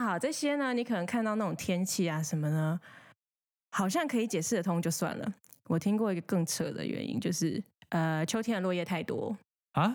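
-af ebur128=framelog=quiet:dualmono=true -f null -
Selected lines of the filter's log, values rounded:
Integrated loudness:
  I:         -29.0 LUFS
  Threshold: -39.3 LUFS
Loudness range:
  LRA:         1.5 LU
  Threshold: -49.5 LUFS
  LRA low:   -30.1 LUFS
  LRA high:  -28.6 LUFS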